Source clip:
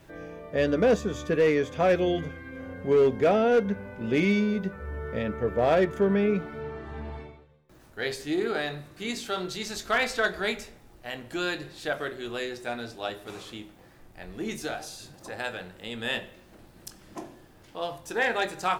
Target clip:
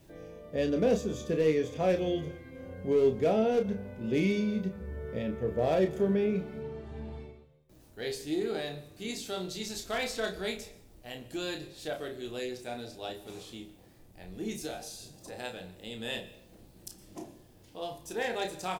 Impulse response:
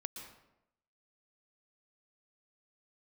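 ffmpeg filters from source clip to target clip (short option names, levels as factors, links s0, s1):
-filter_complex "[0:a]equalizer=f=1400:w=0.86:g=-10.5,asplit=2[s0][s1];[s1]adelay=32,volume=0.473[s2];[s0][s2]amix=inputs=2:normalize=0,asplit=2[s3][s4];[1:a]atrim=start_sample=2205,highshelf=f=6100:g=11[s5];[s4][s5]afir=irnorm=-1:irlink=0,volume=0.266[s6];[s3][s6]amix=inputs=2:normalize=0,volume=0.596"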